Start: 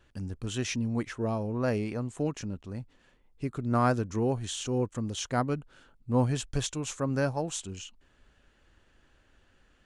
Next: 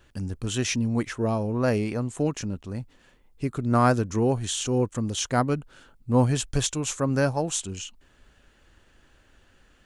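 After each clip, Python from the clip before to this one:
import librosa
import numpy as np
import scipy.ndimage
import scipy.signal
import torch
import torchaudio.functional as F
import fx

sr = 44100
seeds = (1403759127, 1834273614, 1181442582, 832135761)

y = fx.high_shelf(x, sr, hz=8000.0, db=6.5)
y = F.gain(torch.from_numpy(y), 5.0).numpy()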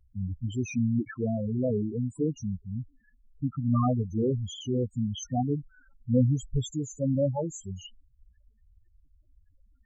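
y = fx.spec_topn(x, sr, count=4)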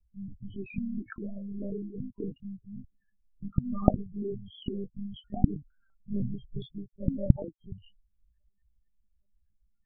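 y = fx.lpc_monotone(x, sr, seeds[0], pitch_hz=200.0, order=16)
y = F.gain(torch.from_numpy(y), -8.0).numpy()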